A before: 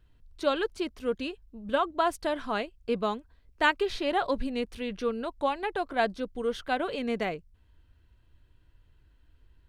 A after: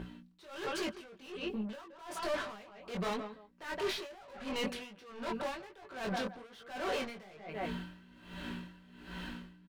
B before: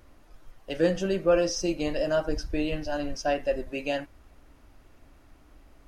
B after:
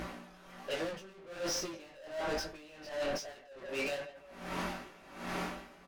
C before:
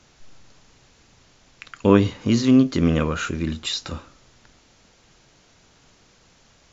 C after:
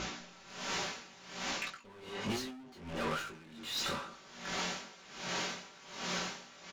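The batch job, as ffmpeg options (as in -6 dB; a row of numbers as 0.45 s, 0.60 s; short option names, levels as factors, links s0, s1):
-filter_complex "[0:a]dynaudnorm=f=110:g=5:m=3.35,aeval=exprs='val(0)+0.00631*(sin(2*PI*60*n/s)+sin(2*PI*2*60*n/s)/2+sin(2*PI*3*60*n/s)/3+sin(2*PI*4*60*n/s)/4+sin(2*PI*5*60*n/s)/5)':c=same,bandreject=f=60:t=h:w=6,bandreject=f=120:t=h:w=6,asoftclip=type=hard:threshold=0.422,aecho=1:1:5.2:0.5,asplit=2[s0][s1];[s1]adelay=167,lowpass=f=2300:p=1,volume=0.15,asplit=2[s2][s3];[s3]adelay=167,lowpass=f=2300:p=1,volume=0.2[s4];[s0][s2][s4]amix=inputs=3:normalize=0,asplit=2[s5][s6];[s6]highpass=f=720:p=1,volume=70.8,asoftclip=type=tanh:threshold=0.75[s7];[s5][s7]amix=inputs=2:normalize=0,lowpass=f=3500:p=1,volume=0.501,flanger=delay=18.5:depth=4.3:speed=1.2,areverse,acompressor=threshold=0.0501:ratio=10,areverse,aeval=exprs='val(0)*pow(10,-21*(0.5-0.5*cos(2*PI*1.3*n/s))/20)':c=same,volume=0.501"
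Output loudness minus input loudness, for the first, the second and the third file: -10.0 LU, -11.5 LU, -19.0 LU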